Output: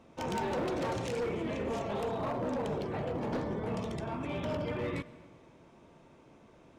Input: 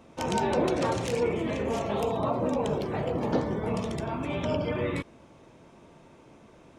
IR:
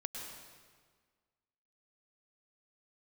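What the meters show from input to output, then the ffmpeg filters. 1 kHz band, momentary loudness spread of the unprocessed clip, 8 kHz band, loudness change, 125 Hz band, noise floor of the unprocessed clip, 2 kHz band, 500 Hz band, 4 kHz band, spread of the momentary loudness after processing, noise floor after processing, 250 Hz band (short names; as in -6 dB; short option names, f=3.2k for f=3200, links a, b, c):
-6.0 dB, 5 LU, -8.0 dB, -6.0 dB, -5.5 dB, -55 dBFS, -5.0 dB, -6.0 dB, -6.0 dB, 4 LU, -59 dBFS, -6.0 dB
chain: -filter_complex "[0:a]highshelf=f=9.1k:g=-7.5,asoftclip=type=hard:threshold=-25dB,asplit=2[a][b];[1:a]atrim=start_sample=2205[c];[b][c]afir=irnorm=-1:irlink=0,volume=-12.5dB[d];[a][d]amix=inputs=2:normalize=0,volume=-6dB"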